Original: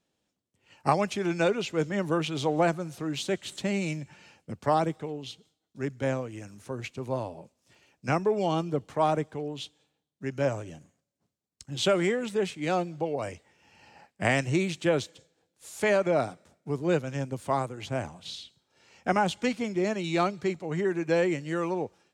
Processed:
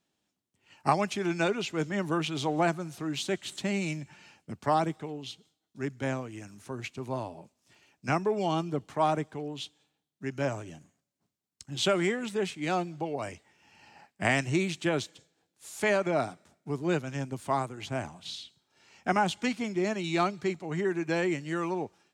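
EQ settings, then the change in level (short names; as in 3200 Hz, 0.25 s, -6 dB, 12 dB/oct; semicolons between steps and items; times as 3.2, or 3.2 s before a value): low shelf 90 Hz -7.5 dB; bell 510 Hz -8 dB 0.34 oct; 0.0 dB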